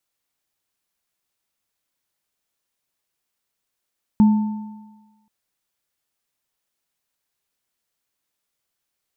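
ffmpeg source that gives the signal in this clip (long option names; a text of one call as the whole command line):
ffmpeg -f lavfi -i "aevalsrc='0.398*pow(10,-3*t/1.16)*sin(2*PI*212*t)+0.0531*pow(10,-3*t/1.48)*sin(2*PI*890*t)':duration=1.08:sample_rate=44100" out.wav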